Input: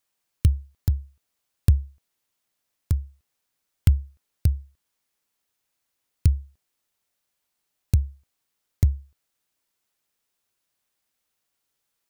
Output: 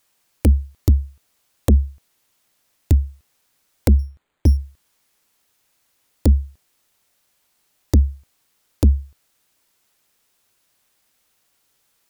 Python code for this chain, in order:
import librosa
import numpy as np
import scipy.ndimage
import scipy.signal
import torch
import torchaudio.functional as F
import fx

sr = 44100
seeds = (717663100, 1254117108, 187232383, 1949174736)

p1 = fx.fold_sine(x, sr, drive_db=13, ceiling_db=-4.5)
p2 = x + (p1 * librosa.db_to_amplitude(-7.0))
y = fx.resample_bad(p2, sr, factor=8, down='filtered', up='hold', at=(3.99, 4.57))